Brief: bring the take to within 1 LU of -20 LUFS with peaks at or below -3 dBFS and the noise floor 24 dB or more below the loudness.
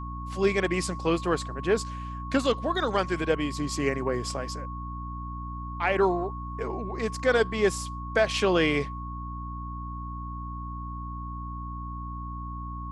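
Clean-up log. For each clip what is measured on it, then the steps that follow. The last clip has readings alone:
hum 60 Hz; highest harmonic 300 Hz; hum level -34 dBFS; steady tone 1.1 kHz; tone level -38 dBFS; loudness -29.0 LUFS; peak level -11.0 dBFS; loudness target -20.0 LUFS
-> de-hum 60 Hz, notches 5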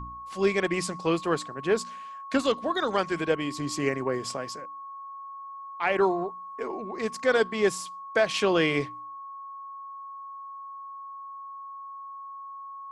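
hum not found; steady tone 1.1 kHz; tone level -38 dBFS
-> band-stop 1.1 kHz, Q 30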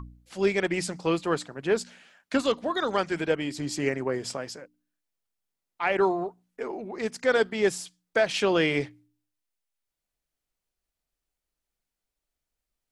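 steady tone not found; loudness -27.5 LUFS; peak level -11.5 dBFS; loudness target -20.0 LUFS
-> trim +7.5 dB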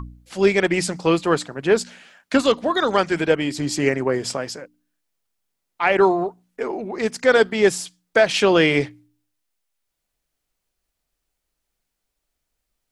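loudness -20.0 LUFS; peak level -4.0 dBFS; noise floor -79 dBFS

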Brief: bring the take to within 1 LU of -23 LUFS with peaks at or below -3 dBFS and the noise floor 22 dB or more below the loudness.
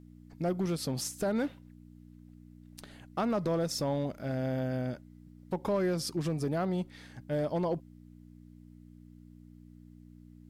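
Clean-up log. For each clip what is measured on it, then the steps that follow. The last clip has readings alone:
clipped samples 0.7%; clipping level -23.5 dBFS; hum 60 Hz; highest harmonic 300 Hz; hum level -53 dBFS; loudness -33.0 LUFS; peak level -23.5 dBFS; loudness target -23.0 LUFS
-> clip repair -23.5 dBFS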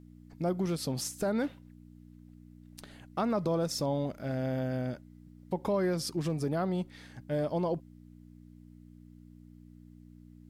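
clipped samples 0.0%; hum 60 Hz; highest harmonic 300 Hz; hum level -53 dBFS
-> de-hum 60 Hz, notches 5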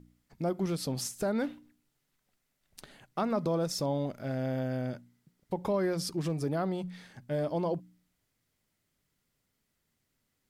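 hum not found; loudness -33.0 LUFS; peak level -19.5 dBFS; loudness target -23.0 LUFS
-> trim +10 dB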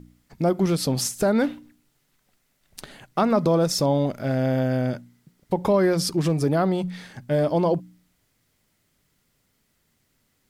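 loudness -23.0 LUFS; peak level -9.5 dBFS; noise floor -70 dBFS

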